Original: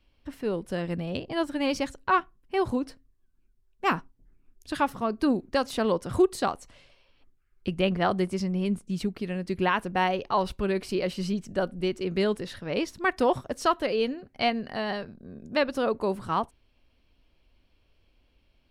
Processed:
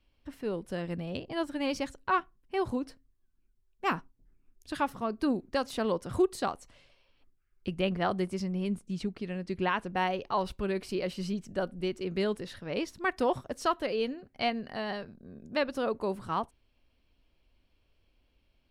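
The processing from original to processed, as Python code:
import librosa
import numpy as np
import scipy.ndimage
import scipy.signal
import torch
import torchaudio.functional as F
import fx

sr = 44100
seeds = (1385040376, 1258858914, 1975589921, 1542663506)

y = fx.lowpass(x, sr, hz=8000.0, slope=12, at=(8.93, 9.96))
y = F.gain(torch.from_numpy(y), -4.5).numpy()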